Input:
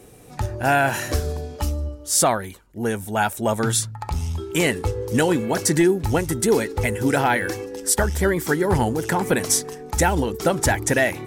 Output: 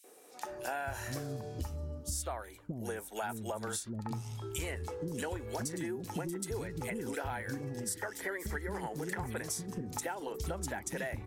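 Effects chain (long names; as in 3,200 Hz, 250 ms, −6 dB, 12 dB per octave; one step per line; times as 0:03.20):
0:07.63–0:09.37: parametric band 1,900 Hz +8.5 dB 0.43 octaves
three-band delay without the direct sound highs, mids, lows 40/470 ms, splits 320/2,800 Hz
downward compressor 6 to 1, threshold −28 dBFS, peak gain reduction 13.5 dB
level −7 dB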